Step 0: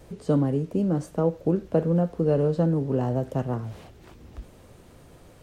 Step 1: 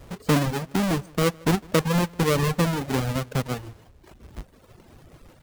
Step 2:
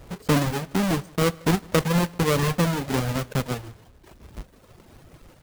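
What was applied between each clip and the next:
each half-wave held at its own peak; slap from a distant wall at 27 metres, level −14 dB; reverb reduction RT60 1.2 s; level −1.5 dB
one scale factor per block 3 bits; convolution reverb, pre-delay 3 ms, DRR 19 dB

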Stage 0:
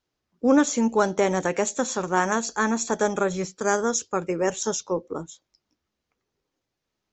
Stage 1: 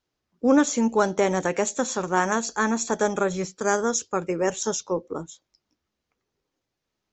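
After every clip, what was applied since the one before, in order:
no processing that can be heard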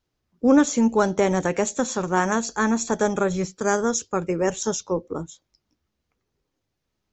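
low-shelf EQ 170 Hz +9.5 dB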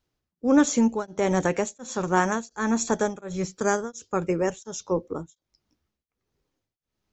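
tremolo along a rectified sine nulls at 1.4 Hz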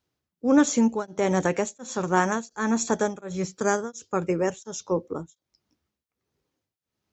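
high-pass filter 74 Hz

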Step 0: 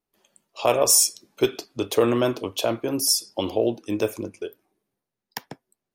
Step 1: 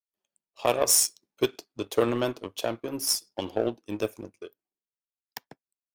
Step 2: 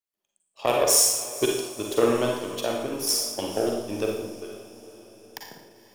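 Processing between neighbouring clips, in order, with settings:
power curve on the samples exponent 1.4; level −1 dB
feedback delay with all-pass diffusion 484 ms, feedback 54%, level −16 dB; four-comb reverb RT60 0.8 s, DRR 0 dB

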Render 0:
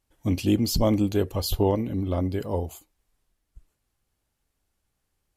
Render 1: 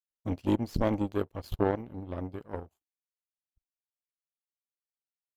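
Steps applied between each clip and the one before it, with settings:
power curve on the samples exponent 2
high-shelf EQ 3,100 Hz −11 dB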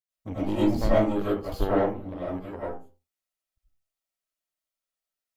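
convolution reverb RT60 0.35 s, pre-delay 60 ms, DRR −10 dB
level −4 dB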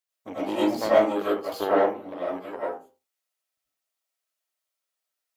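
high-pass filter 410 Hz 12 dB per octave
level +5 dB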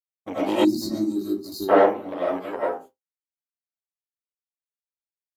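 downward expander −42 dBFS
gain on a spectral selection 0:00.64–0:01.69, 400–3,700 Hz −28 dB
level +5 dB

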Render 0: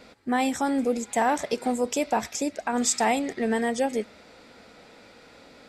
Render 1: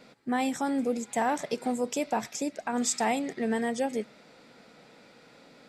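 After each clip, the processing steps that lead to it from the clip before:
low shelf with overshoot 110 Hz −7 dB, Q 3
level −4.5 dB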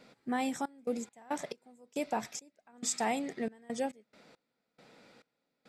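gate pattern "xxx.x.x..xx.." 69 BPM −24 dB
level −4.5 dB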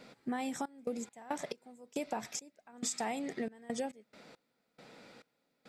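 downward compressor 6 to 1, threshold −37 dBFS, peak gain reduction 9.5 dB
level +3.5 dB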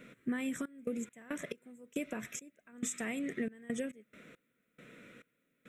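phaser with its sweep stopped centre 2,000 Hz, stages 4
level +3.5 dB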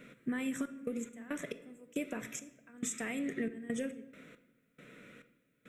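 rectangular room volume 420 cubic metres, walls mixed, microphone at 0.35 metres

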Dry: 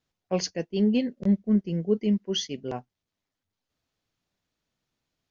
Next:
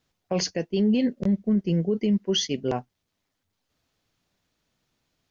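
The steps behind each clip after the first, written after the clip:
brickwall limiter −22.5 dBFS, peak gain reduction 10.5 dB
level +7 dB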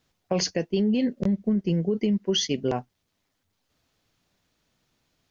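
downward compressor, threshold −23 dBFS, peak gain reduction 5 dB
level +3 dB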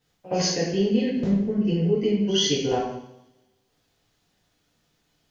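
echo ahead of the sound 68 ms −18 dB
coupled-rooms reverb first 0.76 s, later 1.9 s, from −27 dB, DRR −8.5 dB
level −6.5 dB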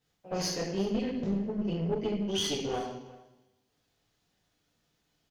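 one-sided soft clipper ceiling −25.5 dBFS
single-tap delay 362 ms −20 dB
level −6 dB

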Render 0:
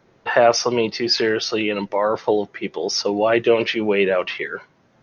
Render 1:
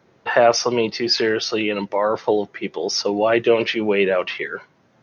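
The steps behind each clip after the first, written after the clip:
high-pass filter 69 Hz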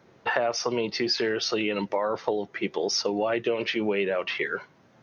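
downward compressor 6 to 1, threshold −23 dBFS, peak gain reduction 13 dB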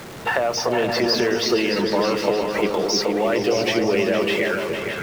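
converter with a step at zero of −35 dBFS
echo whose low-pass opens from repeat to repeat 154 ms, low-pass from 200 Hz, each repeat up 2 octaves, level 0 dB
level +3 dB

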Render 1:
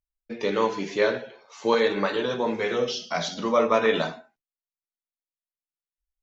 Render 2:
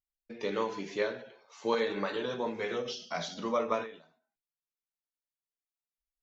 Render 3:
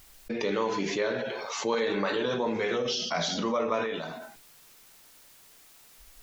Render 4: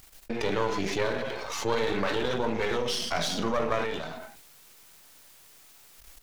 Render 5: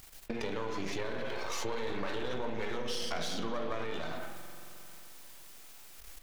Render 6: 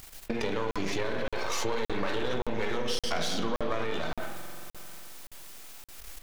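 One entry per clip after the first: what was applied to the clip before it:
every ending faded ahead of time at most 110 dB per second; level −7.5 dB
envelope flattener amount 70%
gain on one half-wave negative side −12 dB; level +3.5 dB
downward compressor, threshold −33 dBFS, peak gain reduction 12 dB; convolution reverb RT60 3.1 s, pre-delay 47 ms, DRR 7 dB
regular buffer underruns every 0.57 s, samples 2,048, zero, from 0:00.71; level +5.5 dB

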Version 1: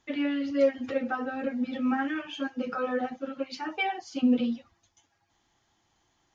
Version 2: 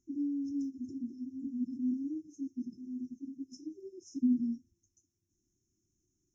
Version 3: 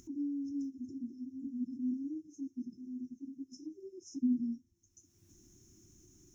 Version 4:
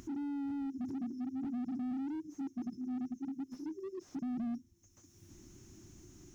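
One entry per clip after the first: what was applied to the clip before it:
brick-wall band-stop 400–5,200 Hz; level −5 dB
upward compression, threshold −41 dBFS; level −2.5 dB
slew-rate limiting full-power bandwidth 1.9 Hz; level +7 dB

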